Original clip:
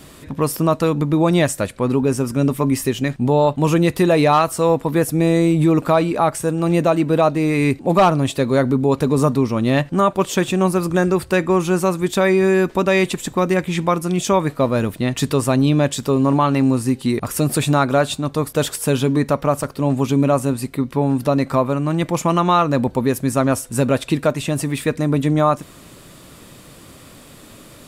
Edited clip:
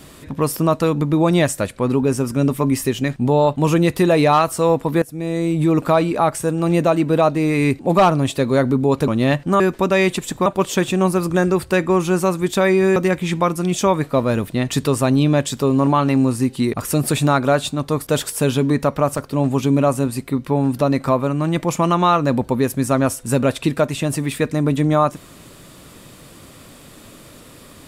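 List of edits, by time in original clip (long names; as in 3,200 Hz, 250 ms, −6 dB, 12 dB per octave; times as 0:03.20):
0:05.02–0:05.82: fade in, from −17 dB
0:09.08–0:09.54: remove
0:12.56–0:13.42: move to 0:10.06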